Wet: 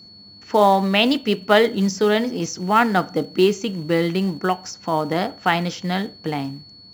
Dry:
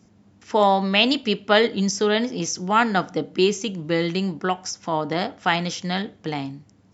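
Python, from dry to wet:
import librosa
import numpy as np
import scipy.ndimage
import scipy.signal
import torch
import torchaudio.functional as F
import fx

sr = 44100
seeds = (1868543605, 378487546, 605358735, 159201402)

p1 = fx.high_shelf(x, sr, hz=3400.0, db=-9.0)
p2 = fx.hum_notches(p1, sr, base_hz=60, count=4, at=(1.19, 2.46))
p3 = fx.quant_float(p2, sr, bits=2)
p4 = p2 + (p3 * 10.0 ** (-4.5 / 20.0))
p5 = p4 + 10.0 ** (-42.0 / 20.0) * np.sin(2.0 * np.pi * 4400.0 * np.arange(len(p4)) / sr)
y = p5 * 10.0 ** (-1.0 / 20.0)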